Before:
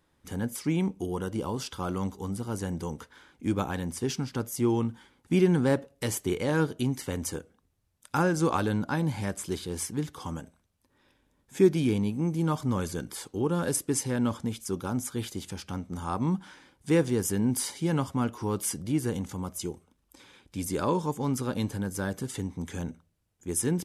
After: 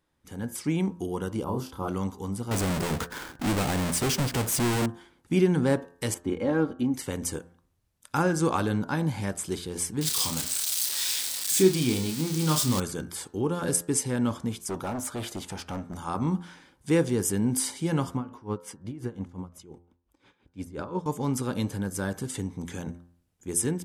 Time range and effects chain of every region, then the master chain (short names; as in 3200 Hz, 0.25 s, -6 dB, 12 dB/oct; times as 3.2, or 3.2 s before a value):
1.44–1.88 band shelf 3800 Hz -11 dB 2.8 oct + doubler 31 ms -3.5 dB + mismatched tape noise reduction decoder only
2.51–4.86 half-waves squared off + compressor 1.5:1, threshold -42 dBFS + sample leveller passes 3
6.14–6.94 LPF 1000 Hz 6 dB/oct + comb 3.7 ms, depth 59%
10.01–12.8 switching spikes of -23 dBFS + bell 4400 Hz +9.5 dB 1.2 oct + doubler 32 ms -6.5 dB
14.68–15.94 hard clip -32.5 dBFS + bell 840 Hz +7.5 dB 2.2 oct
18.17–21.06 LPF 1800 Hz 6 dB/oct + dB-linear tremolo 5.7 Hz, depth 18 dB
whole clip: de-hum 86.65 Hz, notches 21; dynamic EQ 8300 Hz, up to +6 dB, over -52 dBFS, Q 4.8; AGC gain up to 6.5 dB; gain -5.5 dB